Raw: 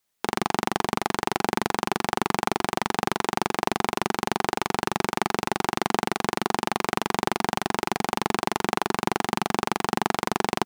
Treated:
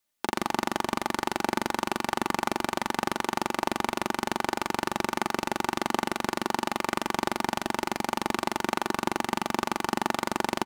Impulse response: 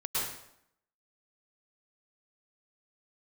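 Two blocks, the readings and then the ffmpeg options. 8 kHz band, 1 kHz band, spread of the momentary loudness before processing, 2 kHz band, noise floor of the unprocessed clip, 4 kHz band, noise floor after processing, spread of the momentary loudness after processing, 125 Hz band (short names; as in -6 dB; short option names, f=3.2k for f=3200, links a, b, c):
-3.0 dB, -3.0 dB, 1 LU, -2.5 dB, -69 dBFS, -3.0 dB, -51 dBFS, 1 LU, -6.0 dB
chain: -filter_complex "[0:a]aecho=1:1:3.4:0.45,asplit=2[a][b];[1:a]atrim=start_sample=2205,lowshelf=f=140:g=7.5[c];[b][c]afir=irnorm=-1:irlink=0,volume=-27dB[d];[a][d]amix=inputs=2:normalize=0,volume=-4dB"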